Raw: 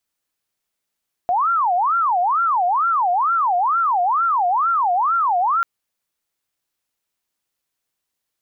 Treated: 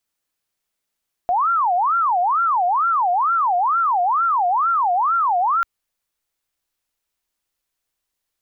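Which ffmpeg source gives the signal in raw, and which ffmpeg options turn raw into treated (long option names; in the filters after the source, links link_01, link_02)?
-f lavfi -i "aevalsrc='0.178*sin(2*PI*(1041*t-339/(2*PI*2.2)*sin(2*PI*2.2*t)))':duration=4.34:sample_rate=44100"
-af "asubboost=boost=3:cutoff=72"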